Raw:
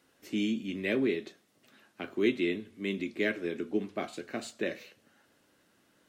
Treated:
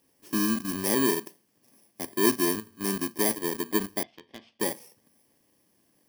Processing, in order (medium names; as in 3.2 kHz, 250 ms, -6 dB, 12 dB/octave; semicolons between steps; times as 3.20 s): bit-reversed sample order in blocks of 32 samples; 4.03–4.60 s: four-pole ladder low-pass 3.8 kHz, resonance 55%; in parallel at -4 dB: bit crusher 6-bit